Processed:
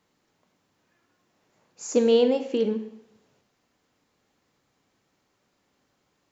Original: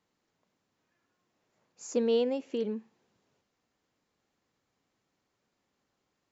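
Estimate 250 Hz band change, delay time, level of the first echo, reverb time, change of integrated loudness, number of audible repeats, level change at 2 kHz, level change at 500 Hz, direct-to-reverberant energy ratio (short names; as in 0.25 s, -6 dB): +7.5 dB, none, none, 0.75 s, +7.5 dB, none, +8.0 dB, +8.0 dB, 8.0 dB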